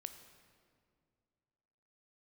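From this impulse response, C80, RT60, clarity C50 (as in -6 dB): 10.5 dB, 2.2 s, 9.5 dB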